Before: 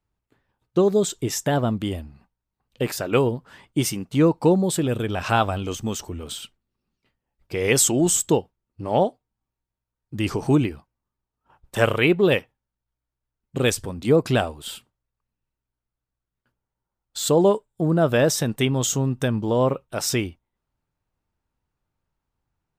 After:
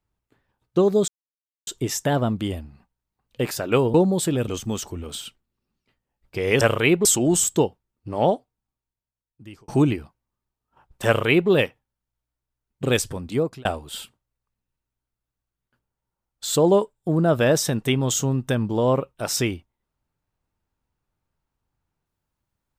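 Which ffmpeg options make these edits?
ffmpeg -i in.wav -filter_complex "[0:a]asplit=8[link_01][link_02][link_03][link_04][link_05][link_06][link_07][link_08];[link_01]atrim=end=1.08,asetpts=PTS-STARTPTS,afade=type=out:start_time=1.076:duration=0.004:curve=hsin,apad=pad_dur=0.59[link_09];[link_02]atrim=start=1.08:end=3.352,asetpts=PTS-STARTPTS,afade=type=in:duration=0.004:curve=hsin[link_10];[link_03]atrim=start=4.448:end=4.992[link_11];[link_04]atrim=start=5.648:end=7.782[link_12];[link_05]atrim=start=11.788:end=12.232[link_13];[link_06]atrim=start=7.778:end=10.41,asetpts=PTS-STARTPTS,afade=type=out:start_time=1.292:duration=1.34[link_14];[link_07]atrim=start=10.41:end=14.38,asetpts=PTS-STARTPTS,afade=type=in:duration=0.004:curve=hsin,afade=type=out:start_time=3.52:duration=0.45[link_15];[link_08]atrim=start=14.38,asetpts=PTS-STARTPTS,afade=type=in:duration=0.004:curve=hsin[link_16];[link_09][link_10]concat=n=2:v=0:a=1[link_17];[link_17][link_11]acrossfade=duration=0.004:curve1=hsin:curve2=hsin[link_18];[link_18][link_12]acrossfade=duration=0.004:curve1=hsin:curve2=hsin[link_19];[link_19][link_13]acrossfade=duration=0.004:curve1=hsin:curve2=hsin[link_20];[link_14][link_15][link_16]concat=n=3:v=0:a=1[link_21];[link_20][link_21]acrossfade=duration=0.004:curve1=hsin:curve2=hsin" out.wav

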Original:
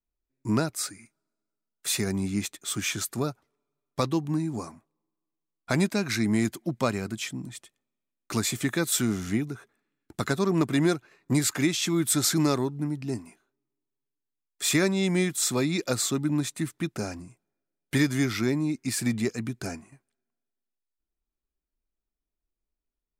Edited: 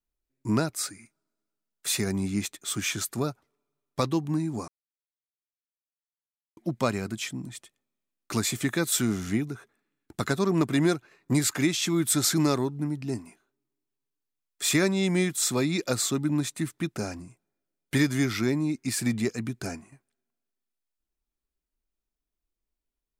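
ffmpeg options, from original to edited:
ffmpeg -i in.wav -filter_complex "[0:a]asplit=3[link_01][link_02][link_03];[link_01]atrim=end=4.68,asetpts=PTS-STARTPTS,afade=type=out:start_time=4.676:duration=0.004:curve=hsin[link_04];[link_02]atrim=start=4.68:end=6.57,asetpts=PTS-STARTPTS,volume=0[link_05];[link_03]atrim=start=6.57,asetpts=PTS-STARTPTS,afade=type=in:duration=0.004:curve=hsin[link_06];[link_04][link_05][link_06]concat=n=3:v=0:a=1" out.wav

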